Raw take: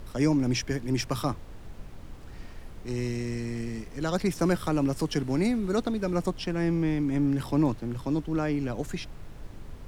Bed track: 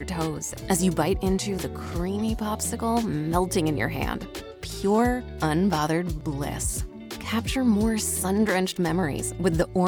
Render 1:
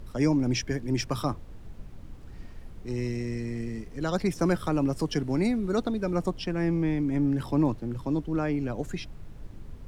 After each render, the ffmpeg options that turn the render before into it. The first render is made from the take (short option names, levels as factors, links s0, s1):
-af "afftdn=nr=6:nf=-44"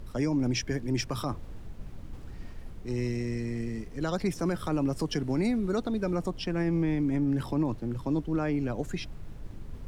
-af "areverse,acompressor=mode=upward:threshold=0.02:ratio=2.5,areverse,alimiter=limit=0.106:level=0:latency=1:release=64"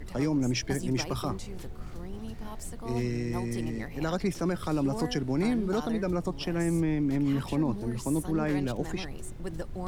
-filter_complex "[1:a]volume=0.178[s0];[0:a][s0]amix=inputs=2:normalize=0"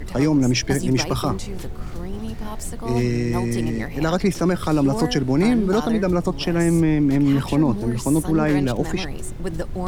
-af "volume=2.99"